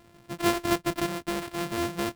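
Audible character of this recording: a buzz of ramps at a fixed pitch in blocks of 128 samples; tremolo saw up 0.94 Hz, depth 30%; aliases and images of a low sample rate 6.4 kHz, jitter 20%

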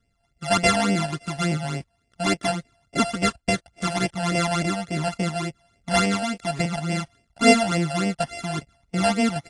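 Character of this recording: a buzz of ramps at a fixed pitch in blocks of 64 samples; phasing stages 12, 3.5 Hz, lowest notch 360–1300 Hz; AAC

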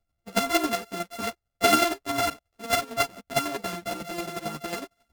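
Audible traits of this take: a buzz of ramps at a fixed pitch in blocks of 64 samples; chopped level 11 Hz, depth 60%, duty 15%; a shimmering, thickened sound

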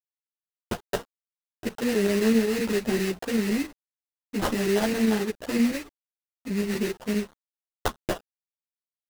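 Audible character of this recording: a quantiser's noise floor 8-bit, dither none; chopped level 7.7 Hz, depth 65%, duty 90%; aliases and images of a low sample rate 2.3 kHz, jitter 20%; a shimmering, thickened sound

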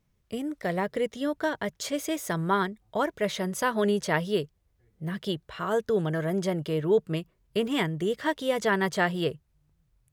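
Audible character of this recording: noise floor -71 dBFS; spectral tilt -4.5 dB/octave

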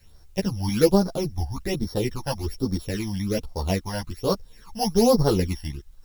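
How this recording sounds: a buzz of ramps at a fixed pitch in blocks of 8 samples; phasing stages 12, 1.2 Hz, lowest notch 390–2700 Hz; a quantiser's noise floor 12-bit, dither triangular; a shimmering, thickened sound

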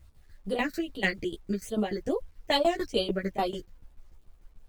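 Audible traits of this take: phasing stages 6, 2.4 Hz, lowest notch 780–1900 Hz; tremolo saw down 6.8 Hz, depth 90%; a quantiser's noise floor 12-bit, dither none; a shimmering, thickened sound

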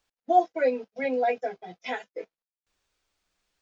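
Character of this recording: noise floor -96 dBFS; spectral tilt +2.5 dB/octave

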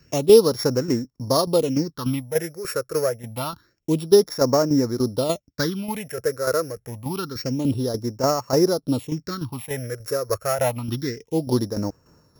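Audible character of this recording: a buzz of ramps at a fixed pitch in blocks of 8 samples; tremolo saw down 3.4 Hz, depth 60%; phasing stages 6, 0.27 Hz, lowest notch 220–3400 Hz

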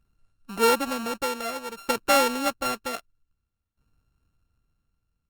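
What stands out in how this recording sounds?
a buzz of ramps at a fixed pitch in blocks of 32 samples; tremolo saw down 0.53 Hz, depth 90%; Opus

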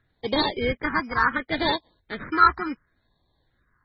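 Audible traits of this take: aliases and images of a low sample rate 2.7 kHz, jitter 0%; phasing stages 4, 0.69 Hz, lowest notch 550–1400 Hz; MP3

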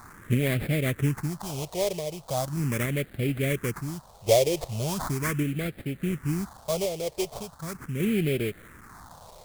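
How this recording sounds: a quantiser's noise floor 8-bit, dither triangular; random-step tremolo; aliases and images of a low sample rate 2.8 kHz, jitter 20%; phasing stages 4, 0.39 Hz, lowest notch 240–1000 Hz

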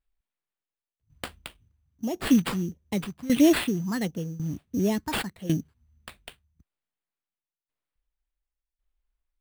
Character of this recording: tremolo saw down 0.91 Hz, depth 85%; phasing stages 4, 1.5 Hz, lowest notch 430–1800 Hz; aliases and images of a low sample rate 6.1 kHz, jitter 0%

